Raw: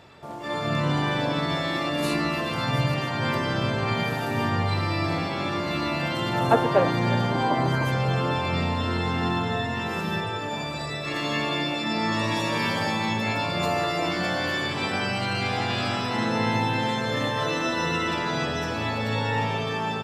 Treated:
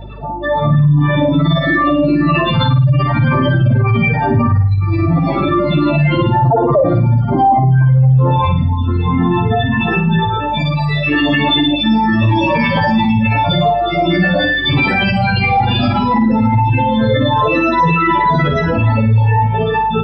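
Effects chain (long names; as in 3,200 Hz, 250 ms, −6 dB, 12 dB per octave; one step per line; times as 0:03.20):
expanding power law on the bin magnitudes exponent 3
reverb reduction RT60 0.84 s
flutter between parallel walls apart 9.2 metres, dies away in 0.44 s
mains hum 50 Hz, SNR 21 dB
boost into a limiter +20 dB
level −4 dB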